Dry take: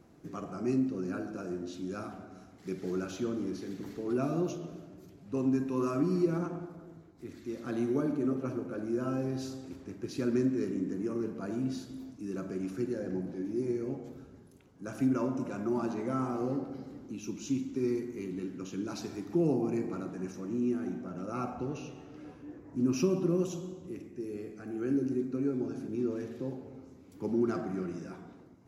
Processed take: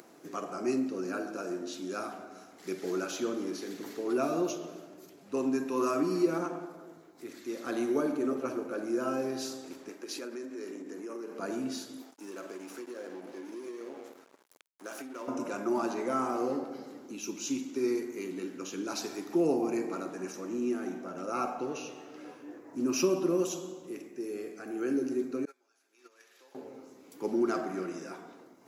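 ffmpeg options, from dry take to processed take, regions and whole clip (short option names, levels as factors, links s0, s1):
-filter_complex "[0:a]asettb=1/sr,asplit=3[s0][s1][s2];[s0]atrim=end=9.894[s3];[s1]atrim=start=9.89:end=11.39,asetpts=PTS-STARTPTS,afade=t=in:d=0.004:c=qsin,afade=t=out:st=1.496:d=0.004:c=qsin,highpass=290,acompressor=threshold=0.0126:ratio=6:attack=3.2:release=140:knee=1:detection=peak[s4];[s2]atrim=start=11.386[s5];[s3][s4]acrossfade=d=0.004:c1=hsin:c2=qsin[s6];[s6][s5]acrossfade=d=0.004:c1=qsin:c2=hsin,asettb=1/sr,asplit=3[s7][s8][s9];[s7]atrim=end=12.024[s10];[s8]atrim=start=12.02:end=15.28,asetpts=PTS-STARTPTS,afade=t=in:d=0.004:c=qsin,afade=t=out:st=3.256:d=0.004:c=qsin,highpass=290,acompressor=threshold=0.0126:ratio=10:attack=3.2:release=140:knee=1:detection=peak,aeval=exprs='sgn(val(0))*max(abs(val(0))-0.00158,0)':c=same[s11];[s9]atrim=start=15.276[s12];[s10][s11]acrossfade=d=0.004:c1=hsin:c2=qsin[s13];[s13][s12]acrossfade=d=0.004:c1=qsin:c2=hsin,asettb=1/sr,asplit=3[s14][s15][s16];[s14]atrim=end=25.454[s17];[s15]atrim=start=25.45:end=26.55,asetpts=PTS-STARTPTS,afade=t=in:d=0.004:c=qsin,afade=t=out:st=1.096:d=0.004:c=qsin,highpass=1400,agate=range=0.1:threshold=0.00251:ratio=16:release=100:detection=peak[s18];[s16]atrim=start=26.546[s19];[s17][s18]acrossfade=d=0.004:c1=hsin:c2=qsin[s20];[s20][s19]acrossfade=d=0.004:c1=qsin:c2=hsin,acompressor=mode=upward:threshold=0.00282:ratio=2.5,highpass=380,highshelf=f=6900:g=6,volume=1.88"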